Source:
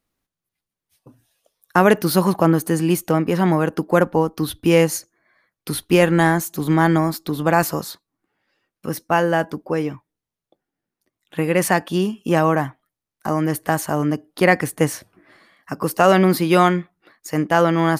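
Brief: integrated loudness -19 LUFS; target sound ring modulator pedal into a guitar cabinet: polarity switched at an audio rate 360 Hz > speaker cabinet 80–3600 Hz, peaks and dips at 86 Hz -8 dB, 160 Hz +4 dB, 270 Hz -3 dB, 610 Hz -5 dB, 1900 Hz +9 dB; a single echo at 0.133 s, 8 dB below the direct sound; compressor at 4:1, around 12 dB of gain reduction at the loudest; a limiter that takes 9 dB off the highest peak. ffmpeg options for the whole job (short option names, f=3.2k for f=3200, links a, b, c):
-af "acompressor=threshold=-24dB:ratio=4,alimiter=limit=-19dB:level=0:latency=1,aecho=1:1:133:0.398,aeval=exprs='val(0)*sgn(sin(2*PI*360*n/s))':c=same,highpass=80,equalizer=f=86:t=q:w=4:g=-8,equalizer=f=160:t=q:w=4:g=4,equalizer=f=270:t=q:w=4:g=-3,equalizer=f=610:t=q:w=4:g=-5,equalizer=f=1.9k:t=q:w=4:g=9,lowpass=f=3.6k:w=0.5412,lowpass=f=3.6k:w=1.3066,volume=10.5dB"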